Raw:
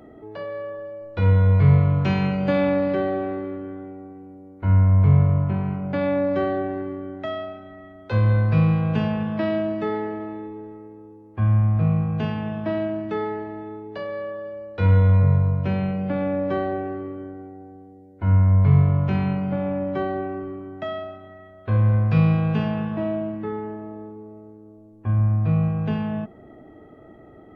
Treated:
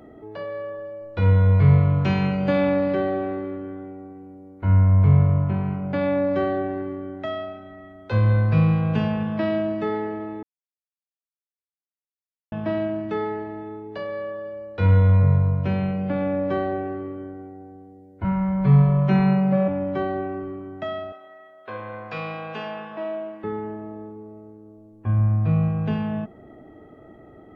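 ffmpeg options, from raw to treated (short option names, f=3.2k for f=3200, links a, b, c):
-filter_complex "[0:a]asettb=1/sr,asplit=3[a][b][c];[a]atrim=end=18.244[d];[b]atrim=start=18.24:end=19.68,asetpts=PTS-STARTPTS,afade=t=in:d=0.004:c=qsin,afade=t=out:st=1.436:d=0.004:c=qsin,aecho=1:1:5.3:0.99,atrim=end_sample=63504[e];[c]atrim=start=19.676[f];[d][e]acrossfade=d=0.004:c1=hsin:c2=qsin[g];[g][f]acrossfade=d=0.004:c1=qsin:c2=hsin,asettb=1/sr,asplit=3[h][i][j];[h]atrim=end=21.124[k];[i]atrim=start=21.12:end=23.44,asetpts=PTS-STARTPTS,afade=t=in:d=0.004:c=qsin,afade=t=out:st=2.316:d=0.004:c=qsin,highpass=510[l];[j]atrim=start=23.436[m];[k][l]acrossfade=d=0.004:c1=hsin:c2=qsin[n];[n][m]acrossfade=d=0.004:c1=qsin:c2=hsin,asplit=3[o][p][q];[o]atrim=end=10.43,asetpts=PTS-STARTPTS,afade=t=out:st=10.426:d=0.004:c=hsin[r];[p]atrim=start=10.43:end=12.52,asetpts=PTS-STARTPTS,volume=0[s];[q]atrim=start=12.52,asetpts=PTS-STARTPTS,afade=t=in:d=0.004:c=hsin[t];[r][s][t]concat=n=3:v=0:a=1"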